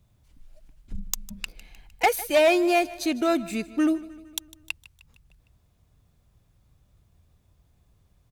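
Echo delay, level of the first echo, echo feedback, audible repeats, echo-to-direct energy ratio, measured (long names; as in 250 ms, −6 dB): 153 ms, −19.0 dB, 56%, 4, −17.5 dB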